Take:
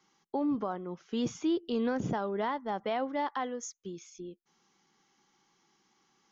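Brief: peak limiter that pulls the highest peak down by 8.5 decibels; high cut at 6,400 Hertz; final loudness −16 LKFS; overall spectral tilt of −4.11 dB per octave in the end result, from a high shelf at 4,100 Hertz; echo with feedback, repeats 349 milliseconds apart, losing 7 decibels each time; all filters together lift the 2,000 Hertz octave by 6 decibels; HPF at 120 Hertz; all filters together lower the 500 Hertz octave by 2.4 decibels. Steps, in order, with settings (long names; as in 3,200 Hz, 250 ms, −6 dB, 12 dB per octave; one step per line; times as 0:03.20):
high-pass filter 120 Hz
low-pass filter 6,400 Hz
parametric band 500 Hz −3.5 dB
parametric band 2,000 Hz +6 dB
high-shelf EQ 4,100 Hz +7.5 dB
brickwall limiter −27 dBFS
repeating echo 349 ms, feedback 45%, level −7 dB
level +20.5 dB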